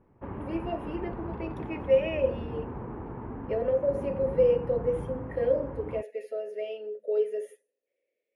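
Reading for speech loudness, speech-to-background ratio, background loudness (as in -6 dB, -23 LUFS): -30.0 LUFS, 9.0 dB, -39.0 LUFS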